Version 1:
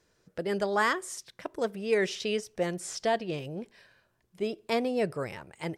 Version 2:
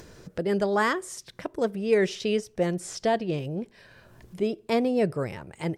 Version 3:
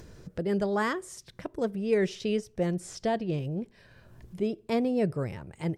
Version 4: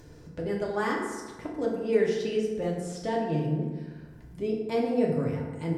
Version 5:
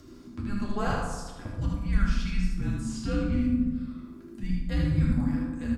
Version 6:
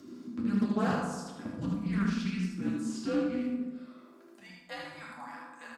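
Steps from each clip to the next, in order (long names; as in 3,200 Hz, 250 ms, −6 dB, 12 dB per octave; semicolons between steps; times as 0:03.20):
low-shelf EQ 480 Hz +8 dB; upward compression, threshold −34 dBFS
low-shelf EQ 220 Hz +9 dB; level −5.5 dB
feedback delay network reverb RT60 1.4 s, low-frequency decay 1.05×, high-frequency decay 0.5×, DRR −3 dB; level −4.5 dB
frequency shifter −400 Hz; single-tap delay 77 ms −3.5 dB
high-pass filter sweep 210 Hz → 920 Hz, 0:02.23–0:05.16; highs frequency-modulated by the lows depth 0.22 ms; level −2.5 dB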